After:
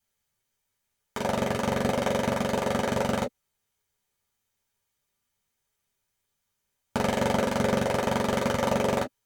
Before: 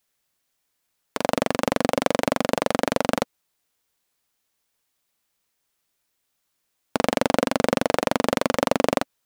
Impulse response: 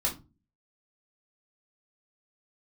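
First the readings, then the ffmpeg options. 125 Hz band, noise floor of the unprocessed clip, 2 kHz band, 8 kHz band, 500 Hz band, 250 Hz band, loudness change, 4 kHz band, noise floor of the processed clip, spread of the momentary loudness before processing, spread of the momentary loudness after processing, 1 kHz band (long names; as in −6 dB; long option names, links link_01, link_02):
+2.5 dB, −76 dBFS, −3.5 dB, −3.5 dB, −3.5 dB, −3.0 dB, −3.5 dB, −4.5 dB, −80 dBFS, 5 LU, 5 LU, −3.5 dB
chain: -filter_complex "[1:a]atrim=start_sample=2205,afade=type=out:start_time=0.14:duration=0.01,atrim=end_sample=6615,asetrate=74970,aresample=44100[link_01];[0:a][link_01]afir=irnorm=-1:irlink=0,volume=-6dB"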